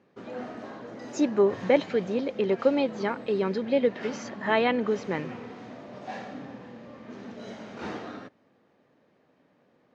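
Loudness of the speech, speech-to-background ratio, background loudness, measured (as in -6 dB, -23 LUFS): -26.5 LUFS, 14.5 dB, -41.0 LUFS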